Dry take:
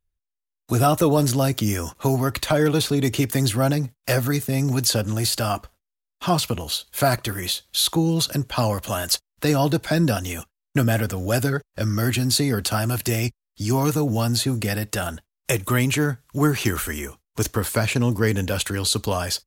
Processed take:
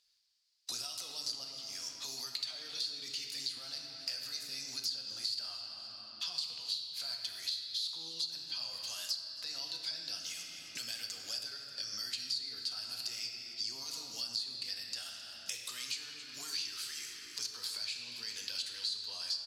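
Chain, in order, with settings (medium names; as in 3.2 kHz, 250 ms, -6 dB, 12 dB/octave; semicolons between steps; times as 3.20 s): peak limiter -15.5 dBFS, peak gain reduction 8 dB; 1.44–2.02 s: level held to a coarse grid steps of 11 dB; band-pass filter 4.7 kHz, Q 6.4; feedback delay 264 ms, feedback 26%, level -19.5 dB; on a send at -1.5 dB: reverberation RT60 1.9 s, pre-delay 4 ms; on the sum: three bands compressed up and down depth 100%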